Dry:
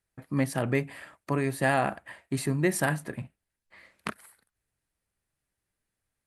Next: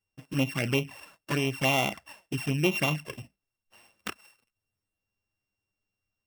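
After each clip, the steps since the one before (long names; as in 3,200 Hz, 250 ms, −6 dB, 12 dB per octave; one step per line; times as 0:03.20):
samples sorted by size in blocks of 16 samples
flanger swept by the level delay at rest 9.8 ms, full sweep at −22.5 dBFS
dynamic equaliser 1,800 Hz, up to +6 dB, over −44 dBFS, Q 0.85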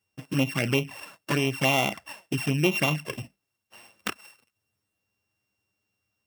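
high-pass filter 90 Hz
in parallel at +2 dB: downward compressor, threshold −35 dBFS, peak gain reduction 14.5 dB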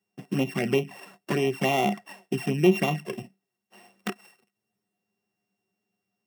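high-pass filter 120 Hz 24 dB per octave
parametric band 430 Hz +3 dB 2.3 octaves
hollow resonant body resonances 200/380/720/1,900 Hz, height 14 dB, ringing for 90 ms
level −5.5 dB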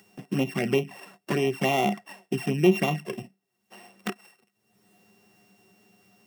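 upward compression, threshold −42 dBFS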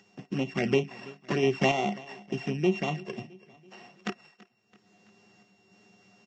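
sample-and-hold tremolo
repeating echo 332 ms, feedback 53%, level −21.5 dB
level +1 dB
Ogg Vorbis 48 kbit/s 16,000 Hz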